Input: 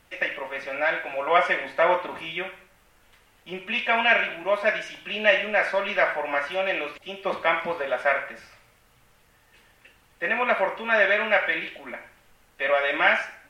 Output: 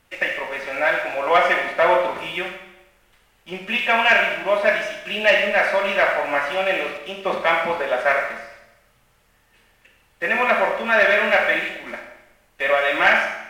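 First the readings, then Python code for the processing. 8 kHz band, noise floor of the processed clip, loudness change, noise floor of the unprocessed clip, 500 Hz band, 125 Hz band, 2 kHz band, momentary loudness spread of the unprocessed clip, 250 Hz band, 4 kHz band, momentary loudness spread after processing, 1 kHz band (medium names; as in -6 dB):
no reading, -60 dBFS, +4.5 dB, -60 dBFS, +4.5 dB, +5.0 dB, +4.5 dB, 13 LU, +4.5 dB, +5.0 dB, 12 LU, +5.0 dB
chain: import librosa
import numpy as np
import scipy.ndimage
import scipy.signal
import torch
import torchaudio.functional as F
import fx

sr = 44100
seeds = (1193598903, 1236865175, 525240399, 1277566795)

y = fx.leveller(x, sr, passes=1)
y = fx.rev_schroeder(y, sr, rt60_s=0.89, comb_ms=28, drr_db=4.5)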